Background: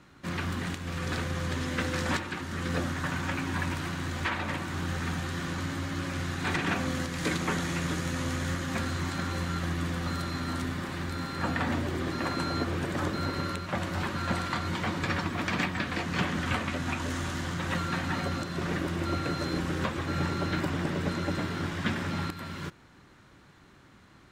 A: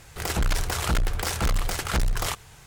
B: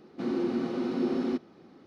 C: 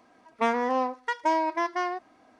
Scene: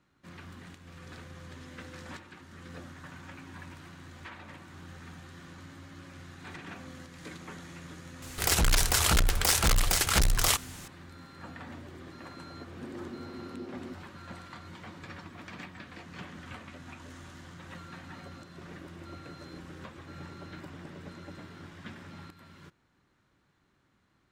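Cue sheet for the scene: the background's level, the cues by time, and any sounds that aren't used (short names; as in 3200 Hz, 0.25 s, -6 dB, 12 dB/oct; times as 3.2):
background -15 dB
8.22 add A -1.5 dB + high shelf 2300 Hz +8.5 dB
12.57 add B -13.5 dB
not used: C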